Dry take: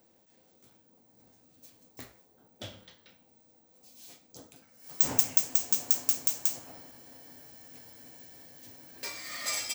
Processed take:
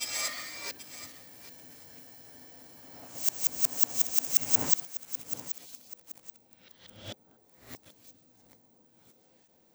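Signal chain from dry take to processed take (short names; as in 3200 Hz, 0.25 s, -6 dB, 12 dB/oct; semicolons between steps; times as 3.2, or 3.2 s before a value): whole clip reversed; pre-echo 0.101 s -18.5 dB; lo-fi delay 0.782 s, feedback 35%, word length 7-bit, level -11 dB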